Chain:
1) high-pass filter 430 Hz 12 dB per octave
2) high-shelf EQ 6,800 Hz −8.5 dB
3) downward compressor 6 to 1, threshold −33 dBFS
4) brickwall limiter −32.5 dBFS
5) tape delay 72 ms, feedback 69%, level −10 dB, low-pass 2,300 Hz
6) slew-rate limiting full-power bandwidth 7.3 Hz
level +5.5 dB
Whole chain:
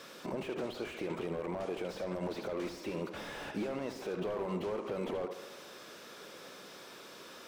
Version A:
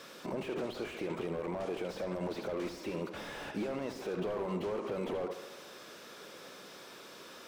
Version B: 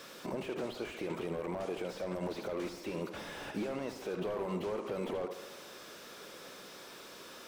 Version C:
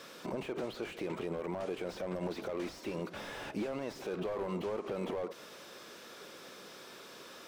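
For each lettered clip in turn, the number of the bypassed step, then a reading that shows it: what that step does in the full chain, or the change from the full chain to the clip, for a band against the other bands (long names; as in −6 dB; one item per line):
3, average gain reduction 3.0 dB
2, 8 kHz band +2.0 dB
5, change in crest factor −1.5 dB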